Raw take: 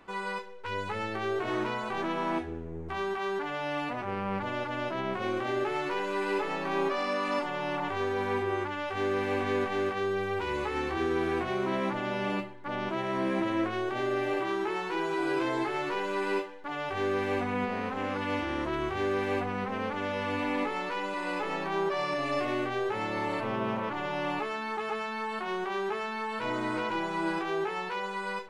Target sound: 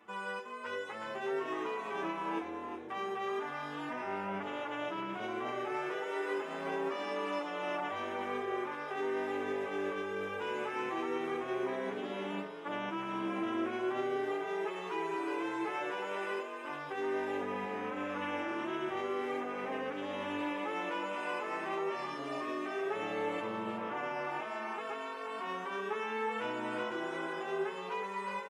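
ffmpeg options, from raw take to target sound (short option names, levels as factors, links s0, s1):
-filter_complex "[0:a]highpass=190,equalizer=f=4300:w=6.3:g=-13,areverse,acompressor=mode=upward:threshold=0.01:ratio=2.5,areverse,alimiter=limit=0.0708:level=0:latency=1:release=417,asplit=2[s0][s1];[s1]asplit=4[s2][s3][s4][s5];[s2]adelay=366,afreqshift=48,volume=0.501[s6];[s3]adelay=732,afreqshift=96,volume=0.15[s7];[s4]adelay=1098,afreqshift=144,volume=0.0452[s8];[s5]adelay=1464,afreqshift=192,volume=0.0135[s9];[s6][s7][s8][s9]amix=inputs=4:normalize=0[s10];[s0][s10]amix=inputs=2:normalize=0,asplit=2[s11][s12];[s12]adelay=6.4,afreqshift=0.38[s13];[s11][s13]amix=inputs=2:normalize=1,volume=0.841"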